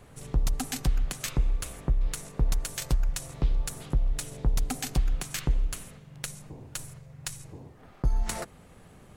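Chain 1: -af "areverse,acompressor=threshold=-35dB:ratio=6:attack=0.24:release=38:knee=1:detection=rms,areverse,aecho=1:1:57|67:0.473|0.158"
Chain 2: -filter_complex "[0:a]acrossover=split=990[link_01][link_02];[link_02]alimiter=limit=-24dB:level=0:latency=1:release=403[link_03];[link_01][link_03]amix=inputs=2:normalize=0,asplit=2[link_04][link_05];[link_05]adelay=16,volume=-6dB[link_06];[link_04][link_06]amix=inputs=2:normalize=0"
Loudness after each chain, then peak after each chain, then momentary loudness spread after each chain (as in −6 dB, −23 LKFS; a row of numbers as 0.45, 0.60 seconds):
−41.5, −32.5 LKFS; −27.5, −12.0 dBFS; 5, 14 LU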